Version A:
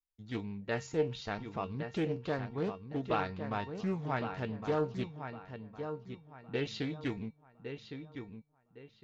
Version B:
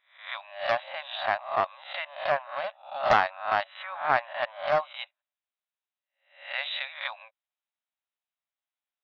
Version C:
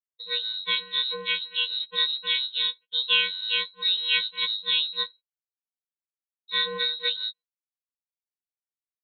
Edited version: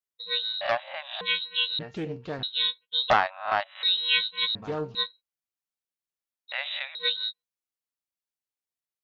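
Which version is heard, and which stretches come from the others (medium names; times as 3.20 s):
C
0.61–1.21 s: from B
1.79–2.43 s: from A
3.10–3.83 s: from B
4.55–4.95 s: from A
6.52–6.95 s: from B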